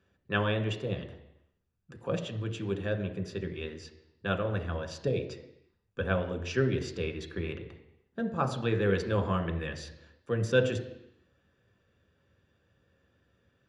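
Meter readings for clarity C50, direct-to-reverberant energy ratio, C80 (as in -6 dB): 10.0 dB, 4.0 dB, 12.0 dB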